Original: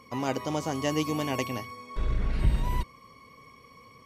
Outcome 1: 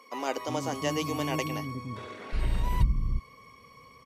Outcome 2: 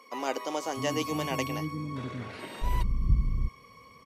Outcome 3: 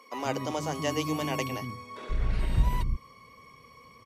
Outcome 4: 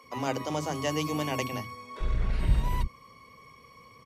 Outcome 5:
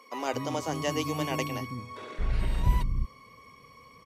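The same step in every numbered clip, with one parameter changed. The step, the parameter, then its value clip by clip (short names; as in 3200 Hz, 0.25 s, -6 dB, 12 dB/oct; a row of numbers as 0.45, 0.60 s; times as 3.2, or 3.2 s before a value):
bands offset in time, time: 360, 650, 130, 40, 220 ms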